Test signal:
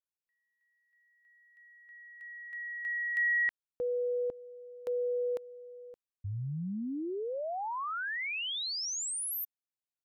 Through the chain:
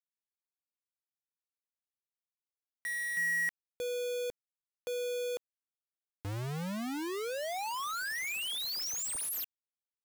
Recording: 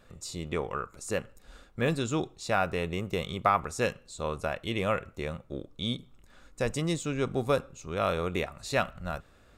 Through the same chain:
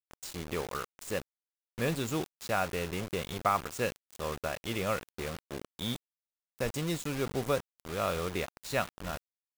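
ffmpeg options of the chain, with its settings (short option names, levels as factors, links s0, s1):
-af "acrusher=bits=5:mix=0:aa=0.000001,volume=0.668"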